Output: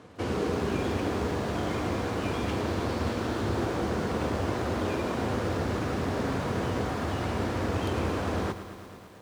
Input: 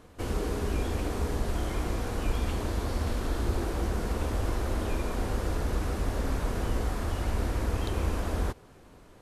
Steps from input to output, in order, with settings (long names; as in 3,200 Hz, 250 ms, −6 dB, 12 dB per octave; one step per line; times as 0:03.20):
stylus tracing distortion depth 0.23 ms
high-pass filter 93 Hz 24 dB per octave
high-frequency loss of the air 59 metres
feedback echo at a low word length 112 ms, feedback 80%, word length 9 bits, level −12.5 dB
level +4.5 dB